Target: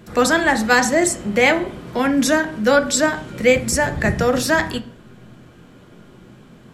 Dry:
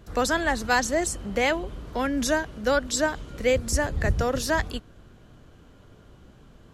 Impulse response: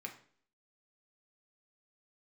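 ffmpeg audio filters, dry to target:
-filter_complex "[0:a]asplit=2[link_01][link_02];[1:a]atrim=start_sample=2205,lowshelf=frequency=230:gain=5[link_03];[link_02][link_03]afir=irnorm=-1:irlink=0,volume=4.5dB[link_04];[link_01][link_04]amix=inputs=2:normalize=0,volume=2dB"

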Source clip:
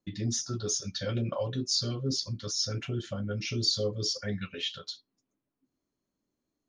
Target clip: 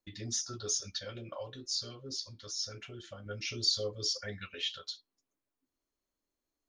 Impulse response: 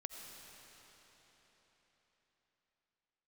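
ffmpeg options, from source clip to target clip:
-filter_complex "[0:a]equalizer=frequency=160:width_type=o:width=1.9:gain=-15,asettb=1/sr,asplit=3[link_01][link_02][link_03];[link_01]atrim=end=0.994[link_04];[link_02]atrim=start=0.99:end=3.26,asetpts=PTS-STARTPTS,afade=type=in:duration=0.004:curve=qsin,afade=type=out:start_time=2.266:duration=0.004:curve=qsin,flanger=delay=4.7:depth=1.9:regen=85:speed=1.1:shape=sinusoidal[link_05];[link_03]atrim=start=3.256[link_06];[link_04][link_05]acrossfade=duration=0.004:curve1=hsin:curve2=qsin[link_07];[link_07][link_06]acrossfade=duration=0.004:curve1=qsin:curve2=hsin,lowshelf=frequency=100:gain=5.5,volume=-1.5dB"

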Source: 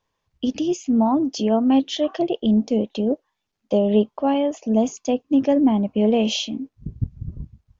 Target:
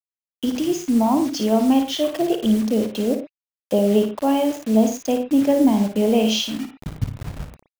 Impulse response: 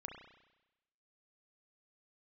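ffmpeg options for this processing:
-filter_complex "[0:a]highshelf=frequency=2500:gain=2,acrusher=bits=5:mix=0:aa=0.000001,asplit=2[link_01][link_02];[1:a]atrim=start_sample=2205,atrim=end_sample=3969,adelay=55[link_03];[link_02][link_03]afir=irnorm=-1:irlink=0,volume=-2dB[link_04];[link_01][link_04]amix=inputs=2:normalize=0"

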